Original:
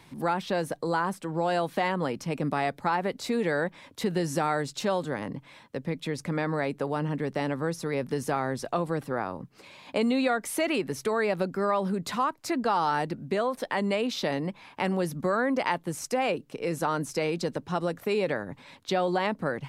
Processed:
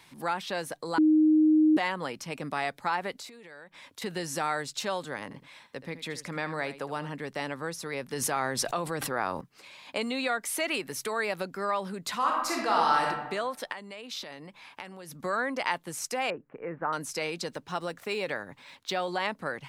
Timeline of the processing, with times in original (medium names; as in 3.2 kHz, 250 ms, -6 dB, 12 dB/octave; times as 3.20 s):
0.98–1.77 s: bleep 310 Hz -9.5 dBFS
3.18–4.02 s: compression 12:1, threshold -40 dBFS
5.23–7.10 s: delay 77 ms -13.5 dB
8.13–9.41 s: level flattener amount 70%
10.71–11.42 s: treble shelf 12 kHz +9.5 dB
12.17–13.05 s: reverb throw, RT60 1 s, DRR -2 dB
13.72–15.23 s: compression 10:1, threshold -34 dBFS
16.30–16.93 s: steep low-pass 1.9 kHz
17.51–19.09 s: median filter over 3 samples
whole clip: tilt shelf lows -6 dB, about 710 Hz; trim -4 dB